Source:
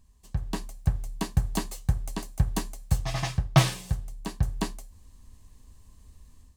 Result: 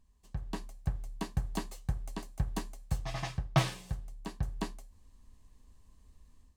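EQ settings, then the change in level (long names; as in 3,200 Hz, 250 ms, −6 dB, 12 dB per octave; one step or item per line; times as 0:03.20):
parametric band 91 Hz −4.5 dB 1.5 octaves
high-shelf EQ 5,100 Hz −7 dB
−5.5 dB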